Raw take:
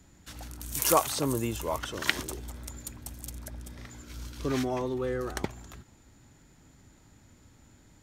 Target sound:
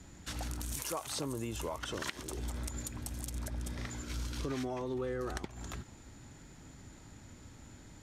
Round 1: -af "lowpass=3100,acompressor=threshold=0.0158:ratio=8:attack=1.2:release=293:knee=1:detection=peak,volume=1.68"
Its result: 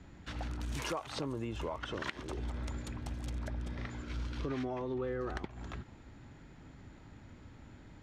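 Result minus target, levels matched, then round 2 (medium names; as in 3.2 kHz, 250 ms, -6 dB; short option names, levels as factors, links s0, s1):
8 kHz band -10.5 dB
-af "lowpass=11000,acompressor=threshold=0.0158:ratio=8:attack=1.2:release=293:knee=1:detection=peak,volume=1.68"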